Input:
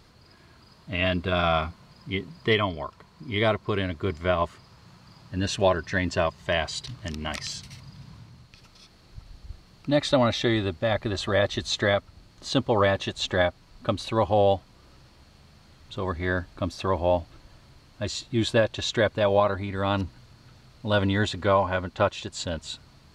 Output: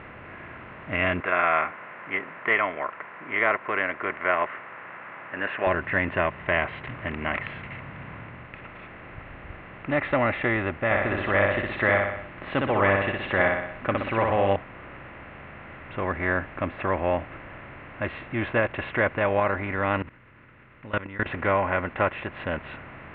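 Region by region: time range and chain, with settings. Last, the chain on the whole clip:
1.20–5.67 s: block-companded coder 7-bit + band-pass 500–2500 Hz + peaking EQ 1.6 kHz +6 dB 1.3 oct
10.85–14.56 s: treble shelf 4.6 kHz +8 dB + feedback delay 61 ms, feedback 42%, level -4.5 dB
20.02–21.26 s: peaking EQ 710 Hz -13.5 dB 0.52 oct + level held to a coarse grid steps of 23 dB
whole clip: spectral levelling over time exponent 0.6; steep low-pass 2.7 kHz 48 dB/octave; peaking EQ 2 kHz +6.5 dB 1.3 oct; trim -6 dB

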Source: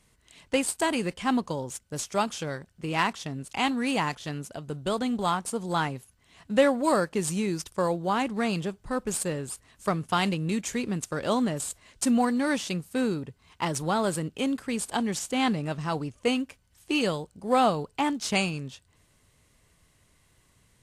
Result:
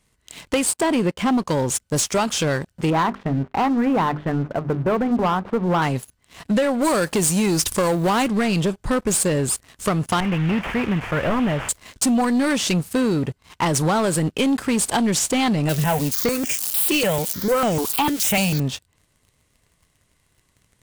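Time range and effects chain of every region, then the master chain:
0.73–1.38 s: companding laws mixed up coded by A + high-pass 220 Hz 6 dB/octave + tilt EQ -2.5 dB/octave
2.90–5.82 s: low-pass 1.6 kHz 24 dB/octave + hum notches 50/100/150/200/250/300/350/400 Hz
6.81–8.27 s: companding laws mixed up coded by mu + treble shelf 5.2 kHz +8.5 dB
10.20–11.69 s: one-bit delta coder 16 kbps, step -38.5 dBFS + peaking EQ 300 Hz -8 dB 2.1 oct
15.69–18.60 s: zero-crossing glitches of -26 dBFS + stepped phaser 6.7 Hz 240–4100 Hz
whole clip: compression, threshold -29 dBFS; waveshaping leveller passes 3; trim +4.5 dB

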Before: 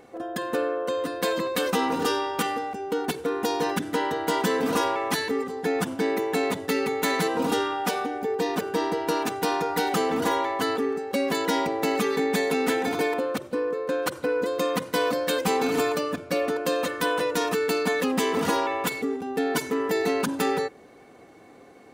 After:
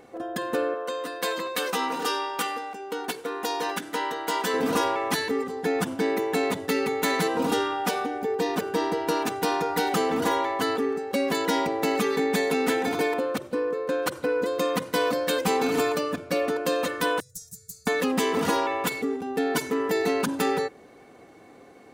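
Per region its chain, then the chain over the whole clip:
0.74–4.54 s: high-pass 190 Hz 6 dB/octave + bass shelf 340 Hz -9.5 dB + doubling 16 ms -12.5 dB
17.20–17.87 s: elliptic band-stop 120–6700 Hz + loudspeaker Doppler distortion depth 0.12 ms
whole clip: none

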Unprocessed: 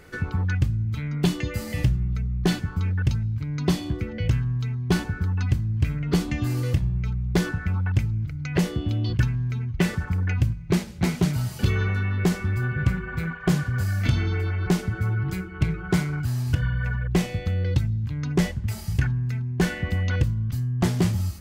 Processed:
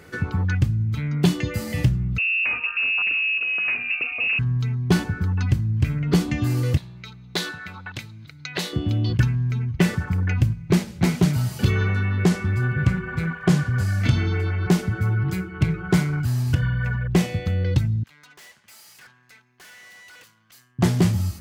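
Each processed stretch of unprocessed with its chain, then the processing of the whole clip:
2.18–4.39 s: comb 0.8 ms, depth 39% + hard clipper -24 dBFS + frequency inversion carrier 2.7 kHz
6.77–8.73 s: high-pass 960 Hz 6 dB/octave + peaking EQ 3.9 kHz +13 dB 0.33 oct
11.71–14.49 s: low-pass 11 kHz + crackle 60 per s -52 dBFS
18.03–20.79 s: high-pass 1.2 kHz + valve stage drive 48 dB, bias 0.65
whole clip: high-pass 100 Hz 12 dB/octave; bass shelf 130 Hz +4.5 dB; trim +2.5 dB

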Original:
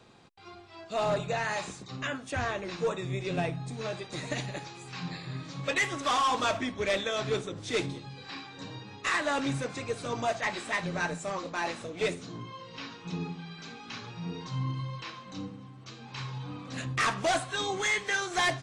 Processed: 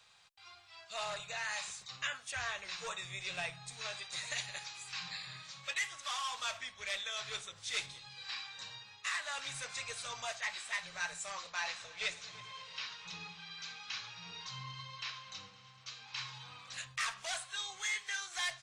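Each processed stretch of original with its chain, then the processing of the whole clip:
11.47–16.27 s: low-pass 7.1 kHz 24 dB/octave + multi-head delay 108 ms, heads all three, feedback 66%, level -23 dB
whole clip: amplifier tone stack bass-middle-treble 10-0-10; gain riding within 4 dB 0.5 s; bass shelf 350 Hz -9 dB

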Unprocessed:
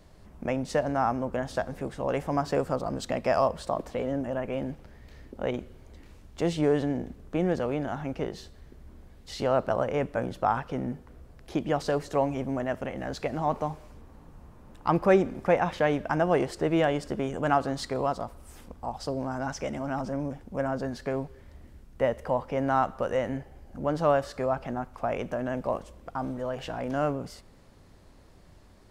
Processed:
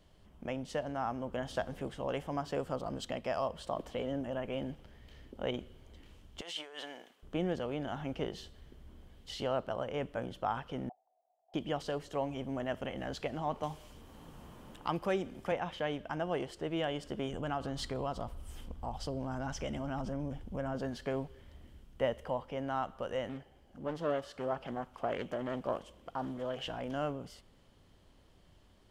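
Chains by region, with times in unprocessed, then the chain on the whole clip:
6.41–7.23 s: high-pass 1 kHz + compressor with a negative ratio -42 dBFS + tape noise reduction on one side only decoder only
10.89–11.54 s: integer overflow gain 25 dB + Butterworth band-pass 720 Hz, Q 5.7
13.63–15.52 s: treble shelf 3.4 kHz +8.5 dB + three bands compressed up and down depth 40%
17.33–20.75 s: bass shelf 110 Hz +11 dB + compression 2:1, threshold -29 dBFS
23.29–26.66 s: bass shelf 97 Hz -10 dB + loudspeaker Doppler distortion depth 0.42 ms
whole clip: peaking EQ 3.1 kHz +12.5 dB 0.26 oct; gain riding within 3 dB 0.5 s; trim -8 dB

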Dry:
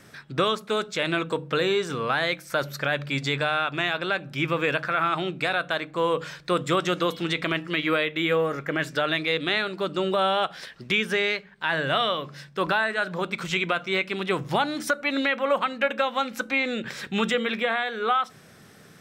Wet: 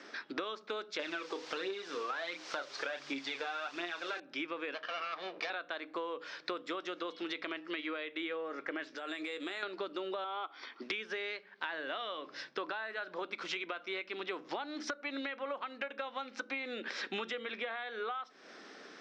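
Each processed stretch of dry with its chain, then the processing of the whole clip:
0.99–4.20 s: doubling 29 ms -8.5 dB + phaser 1.4 Hz, delay 2.7 ms, feedback 54% + word length cut 6-bit, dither triangular
4.74–5.50 s: comb filter that takes the minimum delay 1.7 ms + low-pass 5.2 kHz + bass shelf 160 Hz -7 dB
8.87–9.63 s: compression 4:1, threshold -37 dBFS + doubling 16 ms -12 dB + careless resampling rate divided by 4×, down none, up hold
10.24–10.82 s: brick-wall FIR high-pass 210 Hz + tape spacing loss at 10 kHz 20 dB + comb 0.9 ms, depth 66%
whole clip: elliptic band-pass 280–5400 Hz, stop band 40 dB; compression 16:1, threshold -37 dBFS; trim +1.5 dB

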